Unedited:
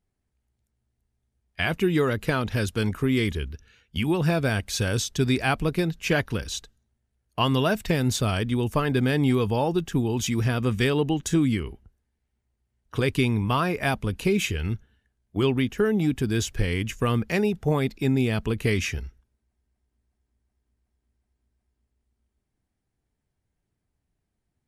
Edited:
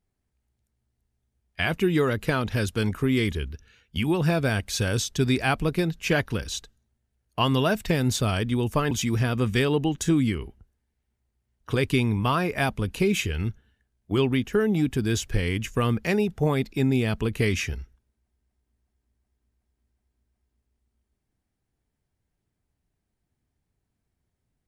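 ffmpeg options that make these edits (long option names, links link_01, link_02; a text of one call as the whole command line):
ffmpeg -i in.wav -filter_complex "[0:a]asplit=2[link_01][link_02];[link_01]atrim=end=8.912[link_03];[link_02]atrim=start=10.158[link_04];[link_03][link_04]acrossfade=duration=0.004:curve1=hsin:curve2=hsin" out.wav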